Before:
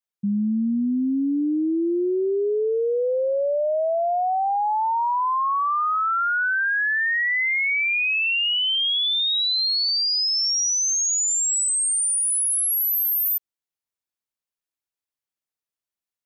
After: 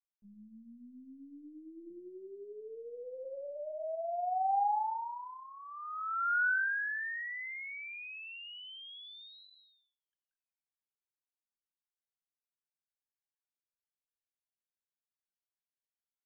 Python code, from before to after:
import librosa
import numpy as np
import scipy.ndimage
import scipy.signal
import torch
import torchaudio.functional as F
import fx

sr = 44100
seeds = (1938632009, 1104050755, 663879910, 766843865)

y = fx.double_bandpass(x, sr, hz=1100.0, octaves=0.84)
y = fx.lpc_vocoder(y, sr, seeds[0], excitation='pitch_kept', order=8)
y = fx.echo_filtered(y, sr, ms=95, feedback_pct=29, hz=1100.0, wet_db=-9.0)
y = F.gain(torch.from_numpy(y), -7.0).numpy()